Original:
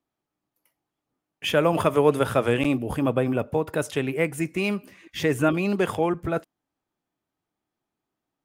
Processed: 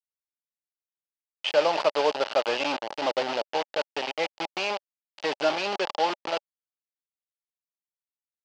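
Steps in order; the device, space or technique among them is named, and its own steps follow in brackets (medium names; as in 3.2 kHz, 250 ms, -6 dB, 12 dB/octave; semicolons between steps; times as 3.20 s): hand-held game console (bit crusher 4-bit; cabinet simulation 410–5400 Hz, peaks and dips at 590 Hz +8 dB, 840 Hz +9 dB, 2.9 kHz +7 dB, 4.7 kHz +6 dB); trim -6.5 dB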